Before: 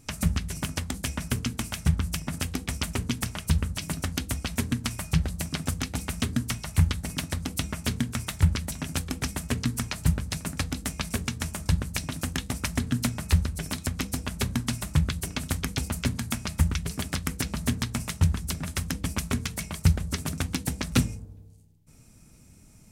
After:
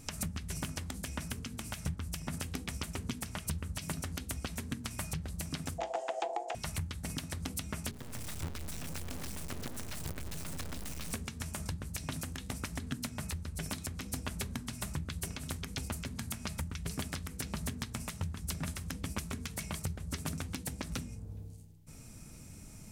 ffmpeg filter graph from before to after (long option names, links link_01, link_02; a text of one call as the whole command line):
ffmpeg -i in.wav -filter_complex "[0:a]asettb=1/sr,asplit=3[link_01][link_02][link_03];[link_01]atrim=end=5.784[link_04];[link_02]atrim=start=5.78:end=6.55,asetpts=PTS-STARTPTS,afade=type=in:duration=0.004:curve=qsin,afade=type=out:start_time=0.766:duration=0.004:curve=qsin,acrossover=split=3800[link_05][link_06];[link_06]acompressor=threshold=-46dB:ratio=4:attack=1:release=60[link_07];[link_05][link_07]amix=inputs=2:normalize=0,aeval=exprs='val(0)*sin(2*PI*590*n/s)':channel_layout=same,highpass=360,equalizer=frequency=450:width_type=q:width=4:gain=-6,equalizer=frequency=650:width_type=q:width=4:gain=10,equalizer=frequency=940:width_type=q:width=4:gain=7,equalizer=frequency=4200:width_type=q:width=4:gain=-4,equalizer=frequency=7000:width_type=q:width=4:gain=6,lowpass=frequency=8600:width=0.5412,lowpass=frequency=8600:width=1.3066[link_08];[link_03]atrim=start=6.546[link_09];[link_04][link_08]acrossfade=duration=0.004:curve1=hsin:curve2=qsin[link_10];[link_10][link_09]acrossfade=duration=0.004:curve1=qsin:curve2=hsin,asettb=1/sr,asplit=3[link_11][link_12][link_13];[link_11]atrim=end=7.914[link_14];[link_12]atrim=start=7.91:end=11.13,asetpts=PTS-STARTPTS,afade=type=in:duration=0.004:curve=qsin,afade=type=out:start_time=3.216:duration=0.004:curve=qsin,aeval=exprs='val(0)+0.5*0.0282*sgn(val(0))':channel_layout=same,acrusher=bits=4:dc=4:mix=0:aa=0.000001,aeval=exprs='(tanh(50.1*val(0)+0.45)-tanh(0.45))/50.1':channel_layout=same[link_15];[link_13]atrim=start=11.126[link_16];[link_14][link_15]acrossfade=duration=0.004:curve1=hsin:curve2=qsin[link_17];[link_17][link_16]acrossfade=duration=0.004:curve1=qsin:curve2=hsin,acompressor=threshold=-37dB:ratio=6,bandreject=frequency=60:width_type=h:width=6,bandreject=frequency=120:width_type=h:width=6,bandreject=frequency=180:width_type=h:width=6,bandreject=frequency=240:width_type=h:width=6,bandreject=frequency=300:width_type=h:width=6,bandreject=frequency=360:width_type=h:width=6,bandreject=frequency=420:width_type=h:width=6,alimiter=level_in=3dB:limit=-24dB:level=0:latency=1:release=100,volume=-3dB,volume=4dB" out.wav